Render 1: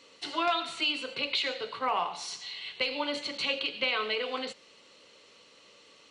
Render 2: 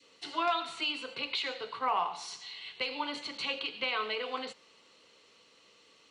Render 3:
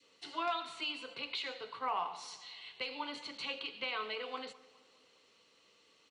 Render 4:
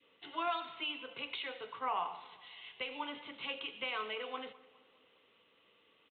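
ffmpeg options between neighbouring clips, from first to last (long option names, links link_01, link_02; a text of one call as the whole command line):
ffmpeg -i in.wav -af "bandreject=frequency=570:width=12,adynamicequalizer=threshold=0.00631:dfrequency=990:dqfactor=1.3:tfrequency=990:tqfactor=1.3:attack=5:release=100:ratio=0.375:range=2.5:mode=boostabove:tftype=bell,volume=-4.5dB" out.wav
ffmpeg -i in.wav -filter_complex "[0:a]asplit=2[link_01][link_02];[link_02]adelay=206,lowpass=frequency=2000:poles=1,volume=-19.5dB,asplit=2[link_03][link_04];[link_04]adelay=206,lowpass=frequency=2000:poles=1,volume=0.53,asplit=2[link_05][link_06];[link_06]adelay=206,lowpass=frequency=2000:poles=1,volume=0.53,asplit=2[link_07][link_08];[link_08]adelay=206,lowpass=frequency=2000:poles=1,volume=0.53[link_09];[link_01][link_03][link_05][link_07][link_09]amix=inputs=5:normalize=0,volume=-5.5dB" out.wav
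ffmpeg -i in.wav -af "aresample=8000,aresample=44100" out.wav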